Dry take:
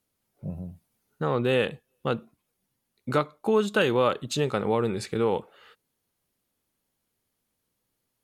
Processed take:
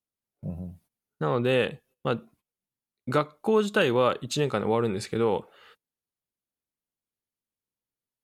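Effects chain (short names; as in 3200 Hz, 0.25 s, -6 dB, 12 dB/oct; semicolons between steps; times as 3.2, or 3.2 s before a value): gate -57 dBFS, range -16 dB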